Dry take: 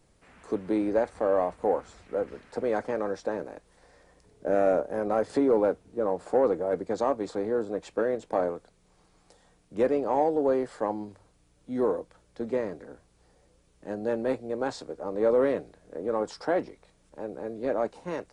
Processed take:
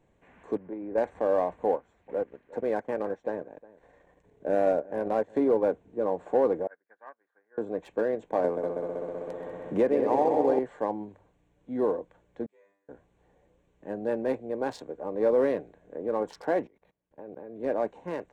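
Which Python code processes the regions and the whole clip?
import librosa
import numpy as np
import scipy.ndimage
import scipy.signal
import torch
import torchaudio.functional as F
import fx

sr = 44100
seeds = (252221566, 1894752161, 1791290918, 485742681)

y = fx.chain(x, sr, fx.level_steps(step_db=12),
    fx.gaussian_blur(sigma=3.0), at=(0.57, 0.98))
y = fx.chain(y, sr, fx.transient(attack_db=-1, sustain_db=-11),
    fx.echo_single(ms=359, db=-21.0), at=(1.72, 5.67))
y = fx.chain(y, sr, fx.bandpass_q(hz=1600.0, q=5.3),
    fx.upward_expand(threshold_db=-53.0, expansion=2.5), at=(6.67, 7.58))
y = fx.chain(y, sr, fx.echo_heads(ms=64, heads='second and third', feedback_pct=64, wet_db=-7.5),
    fx.band_squash(depth_pct=70), at=(8.44, 10.59))
y = fx.chain(y, sr, fx.differentiator(),
    fx.comb_fb(f0_hz=99.0, decay_s=0.56, harmonics='all', damping=0.0, mix_pct=100), at=(12.46, 12.89))
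y = fx.chain(y, sr, fx.highpass(hz=43.0, slope=12),
    fx.level_steps(step_db=21),
    fx.resample_bad(factor=3, down='filtered', up='hold'), at=(16.67, 17.6))
y = fx.wiener(y, sr, points=9)
y = fx.low_shelf(y, sr, hz=97.0, db=-7.0)
y = fx.notch(y, sr, hz=1300.0, q=5.8)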